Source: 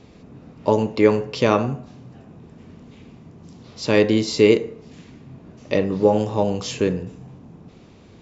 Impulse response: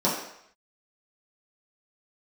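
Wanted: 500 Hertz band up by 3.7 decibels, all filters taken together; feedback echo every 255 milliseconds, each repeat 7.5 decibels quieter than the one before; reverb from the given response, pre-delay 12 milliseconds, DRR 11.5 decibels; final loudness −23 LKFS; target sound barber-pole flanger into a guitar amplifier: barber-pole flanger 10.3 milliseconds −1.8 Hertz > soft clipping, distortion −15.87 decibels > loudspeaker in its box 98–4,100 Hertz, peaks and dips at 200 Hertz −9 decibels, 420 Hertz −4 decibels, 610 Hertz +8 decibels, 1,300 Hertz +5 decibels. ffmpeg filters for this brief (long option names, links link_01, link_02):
-filter_complex "[0:a]equalizer=frequency=500:width_type=o:gain=3.5,aecho=1:1:255|510|765|1020|1275:0.422|0.177|0.0744|0.0312|0.0131,asplit=2[link_01][link_02];[1:a]atrim=start_sample=2205,adelay=12[link_03];[link_02][link_03]afir=irnorm=-1:irlink=0,volume=-25.5dB[link_04];[link_01][link_04]amix=inputs=2:normalize=0,asplit=2[link_05][link_06];[link_06]adelay=10.3,afreqshift=-1.8[link_07];[link_05][link_07]amix=inputs=2:normalize=1,asoftclip=threshold=-11dB,highpass=98,equalizer=frequency=200:width_type=q:width=4:gain=-9,equalizer=frequency=420:width_type=q:width=4:gain=-4,equalizer=frequency=610:width_type=q:width=4:gain=8,equalizer=frequency=1300:width_type=q:width=4:gain=5,lowpass=frequency=4100:width=0.5412,lowpass=frequency=4100:width=1.3066,volume=-1dB"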